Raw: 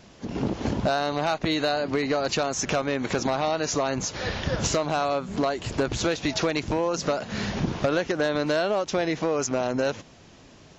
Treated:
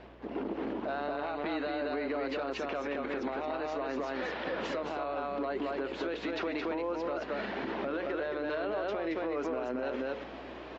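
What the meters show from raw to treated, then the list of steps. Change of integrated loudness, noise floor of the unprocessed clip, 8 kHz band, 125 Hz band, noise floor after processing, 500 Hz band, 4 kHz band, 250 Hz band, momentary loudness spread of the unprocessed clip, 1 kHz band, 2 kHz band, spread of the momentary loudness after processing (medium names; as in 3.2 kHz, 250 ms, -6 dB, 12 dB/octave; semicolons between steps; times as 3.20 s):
-9.0 dB, -51 dBFS, no reading, -20.5 dB, -44 dBFS, -7.5 dB, -14.5 dB, -8.0 dB, 4 LU, -8.0 dB, -7.5 dB, 2 LU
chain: reverse; upward compressor, threshold -29 dBFS; reverse; high-pass 280 Hz 24 dB/octave; distance through air 440 m; hum notches 60/120/180/240/300/360/420/480/540 Hz; on a send: delay 222 ms -3.5 dB; on the sum: dynamic bell 720 Hz, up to -3 dB, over -36 dBFS, Q 1.5; peak limiter -26 dBFS, peak gain reduction 11.5 dB; hum 60 Hz, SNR 22 dB; Opus 32 kbps 48 kHz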